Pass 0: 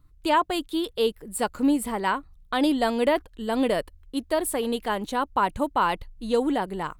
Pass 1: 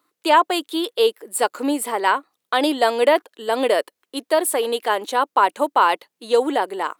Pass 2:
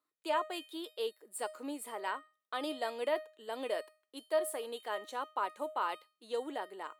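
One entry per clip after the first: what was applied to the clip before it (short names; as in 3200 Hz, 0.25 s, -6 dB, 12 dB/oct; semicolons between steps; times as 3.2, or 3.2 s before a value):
HPF 350 Hz 24 dB/oct; gain +7 dB
resonator 620 Hz, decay 0.37 s, mix 80%; gain -6 dB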